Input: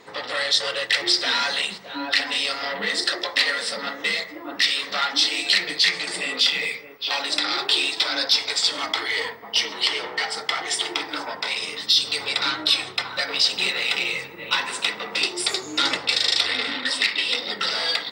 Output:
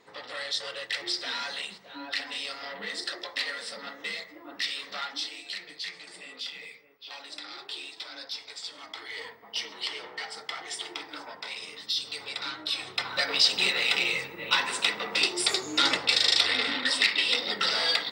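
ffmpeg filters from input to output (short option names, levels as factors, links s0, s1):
-af "volume=1.78,afade=t=out:st=4.98:d=0.43:silence=0.446684,afade=t=in:st=8.84:d=0.57:silence=0.473151,afade=t=in:st=12.71:d=0.47:silence=0.334965"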